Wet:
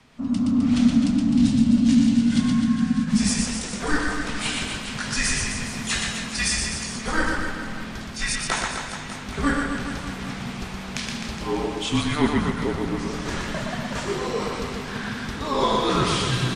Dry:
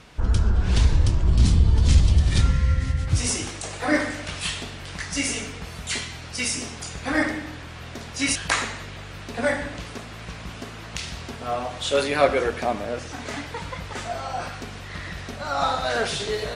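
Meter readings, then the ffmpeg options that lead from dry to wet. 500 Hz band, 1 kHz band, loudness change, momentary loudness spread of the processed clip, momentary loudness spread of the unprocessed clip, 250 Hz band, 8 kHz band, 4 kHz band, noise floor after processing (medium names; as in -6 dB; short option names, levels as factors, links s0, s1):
-2.5 dB, +0.5 dB, +1.0 dB, 12 LU, 16 LU, +10.5 dB, +1.5 dB, +2.0 dB, -34 dBFS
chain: -af "aecho=1:1:120|258|416.7|599.2|809.1:0.631|0.398|0.251|0.158|0.1,afreqshift=-300,dynaudnorm=f=190:g=5:m=2.82,volume=0.473"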